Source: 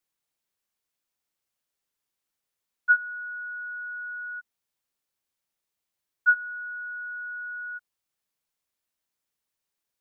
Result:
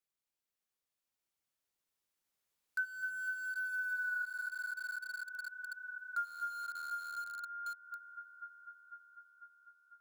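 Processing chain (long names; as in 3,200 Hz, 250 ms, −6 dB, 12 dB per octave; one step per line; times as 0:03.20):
source passing by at 0:04.27, 13 m/s, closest 4.9 metres
delay that swaps between a low-pass and a high-pass 249 ms, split 1,500 Hz, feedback 79%, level −7.5 dB
in parallel at −8 dB: bit reduction 8 bits
on the sum: downward compressor 3 to 1, threshold −55 dBFS, peak gain reduction 21.5 dB
level +13 dB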